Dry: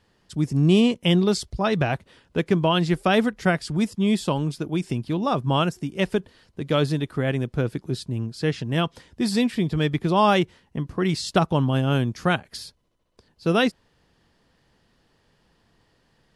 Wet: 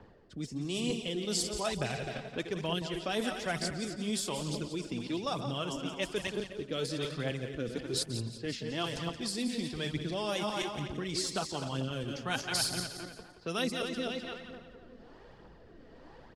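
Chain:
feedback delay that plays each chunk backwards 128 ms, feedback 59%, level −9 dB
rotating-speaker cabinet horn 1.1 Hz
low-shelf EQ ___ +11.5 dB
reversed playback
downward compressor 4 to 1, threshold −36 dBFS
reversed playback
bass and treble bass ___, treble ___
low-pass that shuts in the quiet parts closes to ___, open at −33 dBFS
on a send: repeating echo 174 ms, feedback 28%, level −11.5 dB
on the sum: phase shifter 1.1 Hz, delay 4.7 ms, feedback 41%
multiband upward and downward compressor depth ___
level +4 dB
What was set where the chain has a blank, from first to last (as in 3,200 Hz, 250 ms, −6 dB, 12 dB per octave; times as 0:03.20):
100 Hz, −10 dB, +14 dB, 1,000 Hz, 40%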